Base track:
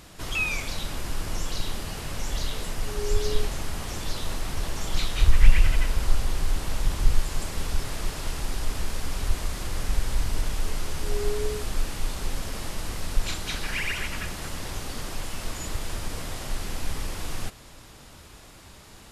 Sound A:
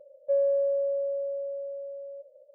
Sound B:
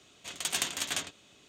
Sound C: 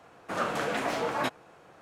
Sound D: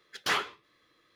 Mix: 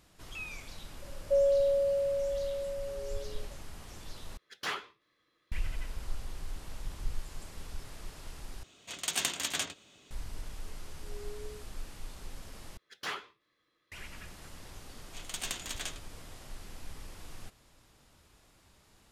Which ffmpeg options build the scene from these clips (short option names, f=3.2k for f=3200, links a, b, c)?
-filter_complex "[4:a]asplit=2[a][b];[2:a]asplit=2[c][d];[0:a]volume=-15dB,asplit=4[e][f][g][h];[e]atrim=end=4.374[i];[a]atrim=end=1.15,asetpts=PTS-STARTPTS,volume=-7.5dB[j];[f]atrim=start=5.516:end=8.634[k];[c]atrim=end=1.48,asetpts=PTS-STARTPTS,volume=-0.5dB[l];[g]atrim=start=10.106:end=12.774[m];[b]atrim=end=1.15,asetpts=PTS-STARTPTS,volume=-9.5dB[n];[h]atrim=start=13.916[o];[1:a]atrim=end=2.54,asetpts=PTS-STARTPTS,volume=-1dB,afade=t=in:d=0.004:c=hsin,afade=t=out:st=2.536:d=0.004:c=hsin,adelay=1020[p];[d]atrim=end=1.48,asetpts=PTS-STARTPTS,volume=-6.5dB,afade=t=in:d=0.004:c=hsin,afade=t=out:st=1.476:d=0.004:c=hsin,adelay=14890[q];[i][j]acrossfade=d=0.004:c1=hsin:c2=hsin[r];[r][k]acrossfade=d=0.004:c1=hsin:c2=hsin[s];[s][l]acrossfade=d=0.004:c1=hsin:c2=hsin[t];[t][m]acrossfade=d=0.004:c1=hsin:c2=hsin[u];[u][n]acrossfade=d=0.004:c1=hsin:c2=hsin[v];[v][o]acrossfade=d=0.004:c1=hsin:c2=hsin[w];[w][p][q]amix=inputs=3:normalize=0"